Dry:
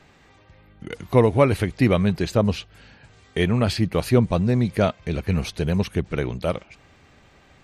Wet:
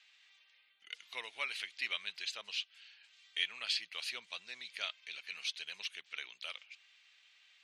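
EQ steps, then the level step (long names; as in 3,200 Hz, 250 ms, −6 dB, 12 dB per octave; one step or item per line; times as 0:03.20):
four-pole ladder band-pass 3,700 Hz, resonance 35%
+6.0 dB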